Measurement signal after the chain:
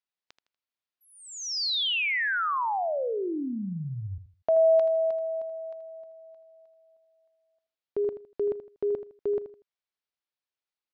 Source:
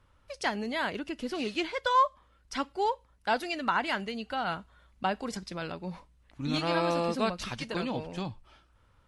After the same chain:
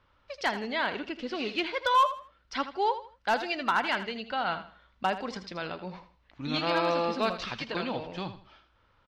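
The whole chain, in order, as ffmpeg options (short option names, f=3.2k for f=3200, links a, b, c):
-filter_complex "[0:a]lowpass=f=5k:w=0.5412,lowpass=f=5k:w=1.3066,lowshelf=f=260:g=-8.5,asoftclip=type=hard:threshold=-20dB,asplit=2[a][b];[b]aecho=0:1:80|160|240:0.251|0.0728|0.0211[c];[a][c]amix=inputs=2:normalize=0,volume=2.5dB"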